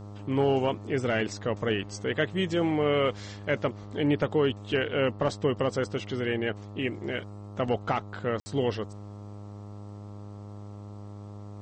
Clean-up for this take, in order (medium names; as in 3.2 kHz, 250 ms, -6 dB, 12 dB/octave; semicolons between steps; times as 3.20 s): de-hum 102.4 Hz, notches 13; room tone fill 8.40–8.46 s